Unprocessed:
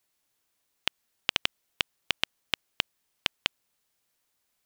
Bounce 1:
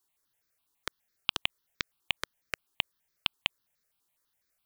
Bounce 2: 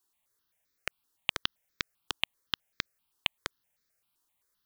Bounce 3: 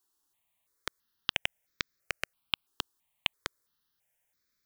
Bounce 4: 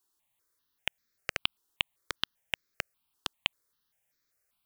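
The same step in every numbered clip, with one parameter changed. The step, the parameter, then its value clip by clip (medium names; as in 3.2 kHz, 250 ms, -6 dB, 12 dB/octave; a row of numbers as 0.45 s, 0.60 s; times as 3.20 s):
stepped phaser, rate: 12 Hz, 7.7 Hz, 3 Hz, 5.1 Hz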